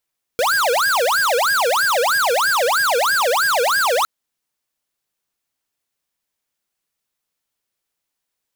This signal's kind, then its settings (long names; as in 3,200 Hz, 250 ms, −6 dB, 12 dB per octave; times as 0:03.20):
siren wail 466–1,640 Hz 3.1 per second square −17 dBFS 3.66 s